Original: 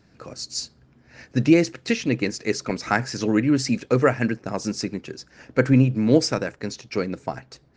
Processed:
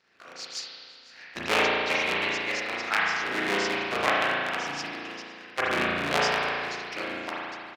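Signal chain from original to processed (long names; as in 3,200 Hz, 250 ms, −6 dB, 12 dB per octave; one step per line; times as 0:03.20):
sub-harmonics by changed cycles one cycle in 3, inverted
resonant band-pass 2,700 Hz, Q 0.77
on a send: repeating echo 509 ms, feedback 45%, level −22 dB
on the sum: spring reverb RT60 2.1 s, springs 35 ms, chirp 45 ms, DRR −6.5 dB
level −3 dB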